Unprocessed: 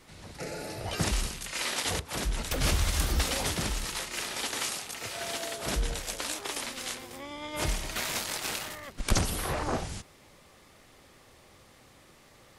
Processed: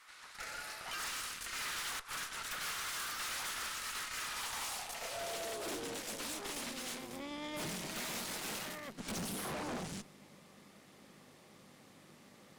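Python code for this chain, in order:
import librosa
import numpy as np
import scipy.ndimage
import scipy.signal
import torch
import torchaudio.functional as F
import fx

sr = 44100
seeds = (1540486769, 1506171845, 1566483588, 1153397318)

y = fx.add_hum(x, sr, base_hz=50, snr_db=28)
y = fx.filter_sweep_highpass(y, sr, from_hz=1300.0, to_hz=190.0, start_s=4.21, end_s=6.35, q=2.4)
y = fx.tube_stage(y, sr, drive_db=38.0, bias=0.75)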